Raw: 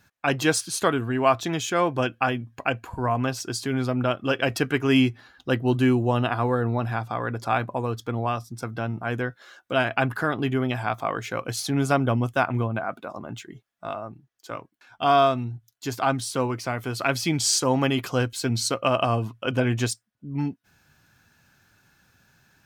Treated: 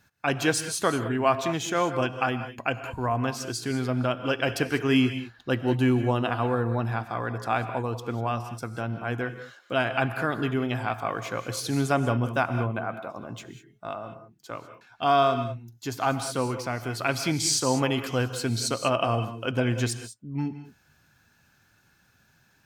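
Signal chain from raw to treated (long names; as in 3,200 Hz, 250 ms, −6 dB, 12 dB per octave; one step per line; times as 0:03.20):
reverb whose tail is shaped and stops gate 220 ms rising, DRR 9.5 dB
level −2.5 dB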